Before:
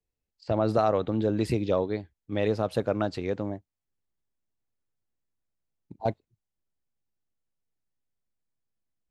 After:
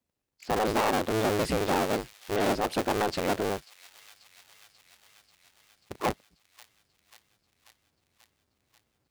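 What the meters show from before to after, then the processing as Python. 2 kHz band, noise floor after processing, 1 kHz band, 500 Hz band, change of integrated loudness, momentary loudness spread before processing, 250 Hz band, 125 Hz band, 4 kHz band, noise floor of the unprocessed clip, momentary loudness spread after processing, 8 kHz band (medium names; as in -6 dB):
+8.5 dB, -77 dBFS, +4.0 dB, -1.5 dB, 0.0 dB, 11 LU, -1.5 dB, -5.0 dB, +8.5 dB, under -85 dBFS, 7 LU, no reading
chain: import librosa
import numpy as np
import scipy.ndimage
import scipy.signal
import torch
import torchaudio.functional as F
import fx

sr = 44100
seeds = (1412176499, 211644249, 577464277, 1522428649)

p1 = fx.cycle_switch(x, sr, every=2, mode='inverted')
p2 = fx.rider(p1, sr, range_db=10, speed_s=0.5)
p3 = p1 + (p2 * 10.0 ** (-1.5 / 20.0))
p4 = fx.highpass(p3, sr, hz=140.0, slope=6)
p5 = fx.echo_wet_highpass(p4, sr, ms=538, feedback_pct=70, hz=2600.0, wet_db=-19)
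y = 10.0 ** (-21.0 / 20.0) * np.tanh(p5 / 10.0 ** (-21.0 / 20.0))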